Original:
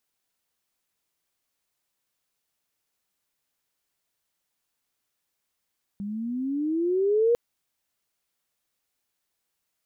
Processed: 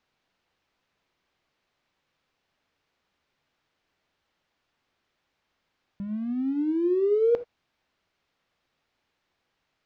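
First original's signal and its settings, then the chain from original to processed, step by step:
gliding synth tone sine, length 1.35 s, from 197 Hz, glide +15.5 st, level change +13 dB, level -17 dB
G.711 law mismatch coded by mu; air absorption 220 m; non-linear reverb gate 0.1 s flat, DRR 12 dB

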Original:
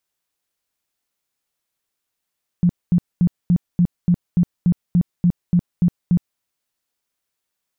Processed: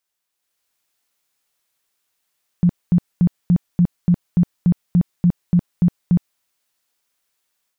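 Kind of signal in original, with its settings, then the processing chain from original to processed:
tone bursts 175 Hz, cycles 11, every 0.29 s, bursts 13, -11 dBFS
low shelf 480 Hz -6.5 dB; AGC gain up to 7 dB

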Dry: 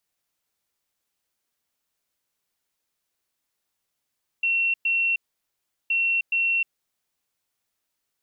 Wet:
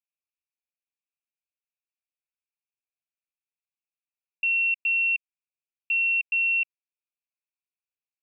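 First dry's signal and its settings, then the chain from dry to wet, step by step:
beep pattern sine 2720 Hz, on 0.31 s, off 0.11 s, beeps 2, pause 0.74 s, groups 2, -19.5 dBFS
sample leveller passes 5; Butterworth band-pass 2500 Hz, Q 5.5

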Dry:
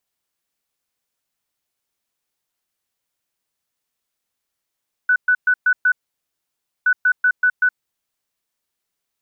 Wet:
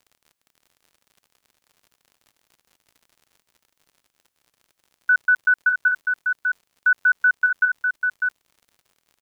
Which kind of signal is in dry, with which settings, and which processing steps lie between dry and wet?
beep pattern sine 1490 Hz, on 0.07 s, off 0.12 s, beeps 5, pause 0.94 s, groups 2, -11.5 dBFS
crackle 52/s -42 dBFS; on a send: echo 0.599 s -5.5 dB

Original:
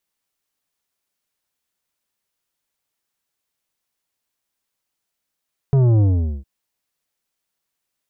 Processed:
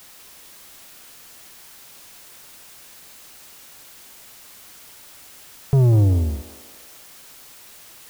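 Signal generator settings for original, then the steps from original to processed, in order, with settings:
sub drop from 140 Hz, over 0.71 s, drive 10 dB, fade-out 0.43 s, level -12.5 dB
added noise white -46 dBFS; thinning echo 0.189 s, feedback 68%, high-pass 450 Hz, level -9 dB

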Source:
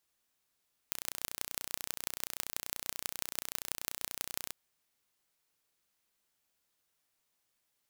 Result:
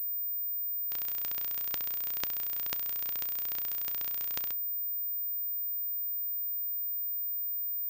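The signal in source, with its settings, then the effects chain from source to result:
pulse train 30.4/s, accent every 5, -5.5 dBFS 3.59 s
resonator 77 Hz, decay 0.17 s, harmonics all, mix 50%; pulse-width modulation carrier 15000 Hz

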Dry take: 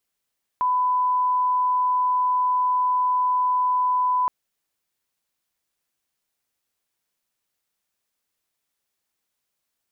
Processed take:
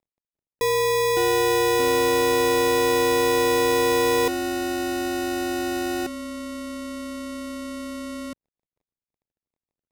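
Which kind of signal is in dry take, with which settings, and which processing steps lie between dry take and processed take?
line-up tone -18 dBFS 3.67 s
CVSD 32 kbps; sample-and-hold 30×; echoes that change speed 0.352 s, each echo -5 st, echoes 2, each echo -6 dB

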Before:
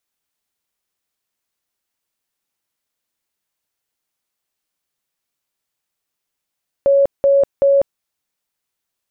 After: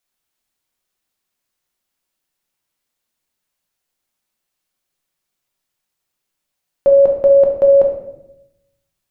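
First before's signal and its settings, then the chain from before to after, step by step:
tone bursts 556 Hz, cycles 109, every 0.38 s, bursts 3, -9 dBFS
shoebox room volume 240 m³, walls mixed, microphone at 0.99 m

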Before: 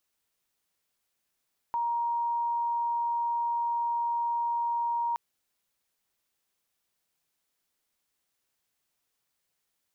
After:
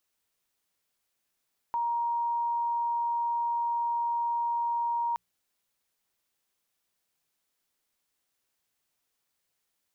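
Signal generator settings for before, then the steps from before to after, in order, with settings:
tone sine 941 Hz -26 dBFS 3.42 s
notches 60/120/180 Hz

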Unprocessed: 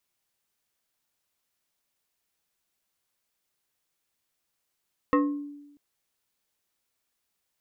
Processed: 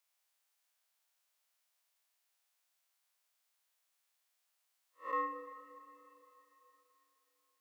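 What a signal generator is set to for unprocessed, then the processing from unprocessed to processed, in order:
FM tone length 0.64 s, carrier 289 Hz, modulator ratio 2.72, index 1.5, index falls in 0.53 s exponential, decay 1.00 s, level -16.5 dB
time blur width 0.144 s; HPF 590 Hz 24 dB/oct; plate-style reverb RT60 3.5 s, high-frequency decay 1×, DRR 8.5 dB

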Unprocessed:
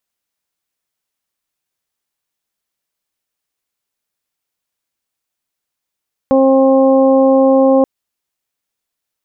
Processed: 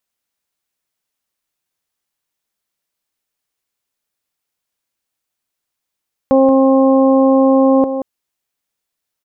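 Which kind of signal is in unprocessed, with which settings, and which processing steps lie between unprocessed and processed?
steady additive tone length 1.53 s, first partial 267 Hz, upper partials 2/-8/-13 dB, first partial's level -11 dB
echo 0.179 s -10 dB

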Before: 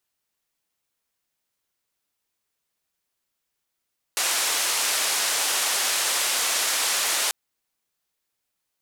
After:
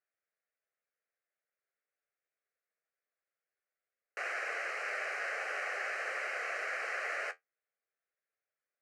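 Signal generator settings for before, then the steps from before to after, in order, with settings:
noise band 540–10000 Hz, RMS -24 dBFS 3.14 s
flange 0.23 Hz, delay 8.2 ms, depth 6.3 ms, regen -54%; Chebyshev band-pass 430–2200 Hz, order 2; fixed phaser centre 950 Hz, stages 6

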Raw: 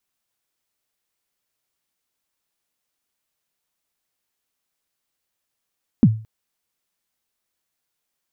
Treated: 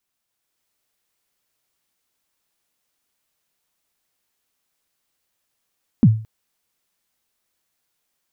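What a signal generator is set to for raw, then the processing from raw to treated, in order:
kick drum length 0.22 s, from 270 Hz, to 110 Hz, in 50 ms, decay 0.37 s, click off, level -5 dB
limiter -11.5 dBFS; AGC gain up to 4.5 dB

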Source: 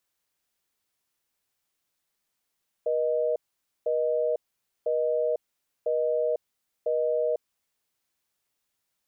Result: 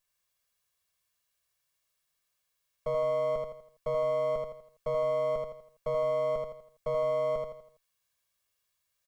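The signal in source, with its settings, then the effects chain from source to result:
call progress tone busy tone, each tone -25.5 dBFS 5.00 s
minimum comb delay 1.8 ms; bell 360 Hz -6.5 dB 1.5 oct; feedback echo 82 ms, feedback 40%, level -3.5 dB

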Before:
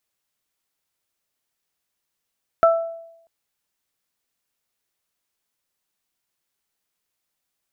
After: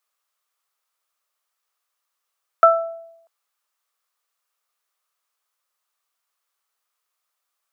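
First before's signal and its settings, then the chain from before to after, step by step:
additive tone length 0.64 s, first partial 664 Hz, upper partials -3 dB, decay 0.82 s, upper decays 0.39 s, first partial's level -10 dB
HPF 460 Hz 24 dB/oct; bell 1200 Hz +11 dB 0.41 oct

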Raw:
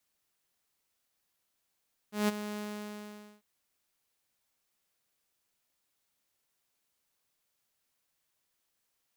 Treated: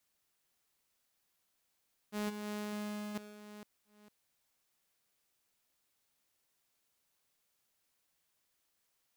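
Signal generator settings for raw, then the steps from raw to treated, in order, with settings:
ADSR saw 209 Hz, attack 0.163 s, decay 22 ms, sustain -12 dB, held 0.44 s, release 0.858 s -21.5 dBFS
reverse delay 0.454 s, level -9.5 dB; compressor 4:1, threshold -37 dBFS

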